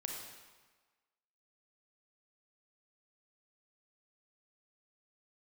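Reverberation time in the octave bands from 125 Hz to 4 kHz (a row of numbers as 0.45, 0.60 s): 1.2, 1.2, 1.3, 1.4, 1.3, 1.1 s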